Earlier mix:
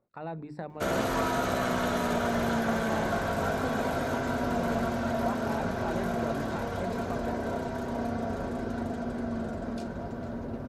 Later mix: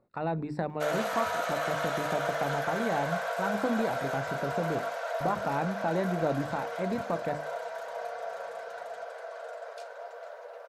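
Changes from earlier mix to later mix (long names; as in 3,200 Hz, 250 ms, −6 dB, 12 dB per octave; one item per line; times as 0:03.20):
speech +6.5 dB
background: add Chebyshev high-pass with heavy ripple 460 Hz, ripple 3 dB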